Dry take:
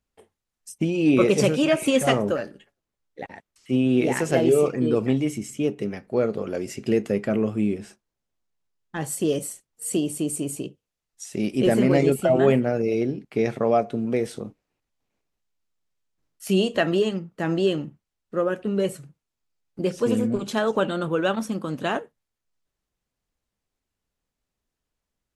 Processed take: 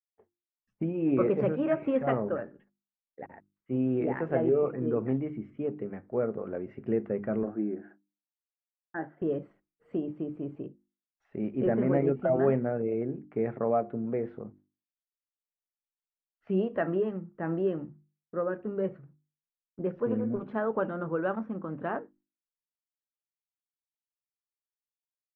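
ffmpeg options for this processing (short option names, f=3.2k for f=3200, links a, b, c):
-filter_complex "[0:a]asettb=1/sr,asplit=3[a][b][c];[a]atrim=end=7.434[d];[b]atrim=start=7.43:end=9.22,asetpts=PTS-STARTPTS,afade=t=in:d=0.004:c=qsin,afade=t=out:st=1.786:d=0.004:c=qsin,highpass=250,equalizer=f=330:t=q:w=4:g=7,equalizer=f=460:t=q:w=4:g=-5,equalizer=f=710:t=q:w=4:g=6,equalizer=f=1.1k:t=q:w=4:g=-6,equalizer=f=1.6k:t=q:w=4:g=9,equalizer=f=2.5k:t=q:w=4:g=-9,lowpass=f=2.8k:w=0.5412,lowpass=f=2.8k:w=1.3066[e];[c]atrim=start=9.216[f];[d][e]acrossfade=d=0.004:c1=hsin:c2=qsin[g];[g][f]acrossfade=d=0.004:c1=qsin:c2=hsin,agate=range=-33dB:threshold=-47dB:ratio=3:detection=peak,lowpass=f=1.7k:w=0.5412,lowpass=f=1.7k:w=1.3066,bandreject=f=50:t=h:w=6,bandreject=f=100:t=h:w=6,bandreject=f=150:t=h:w=6,bandreject=f=200:t=h:w=6,bandreject=f=250:t=h:w=6,bandreject=f=300:t=h:w=6,bandreject=f=350:t=h:w=6,volume=-6.5dB"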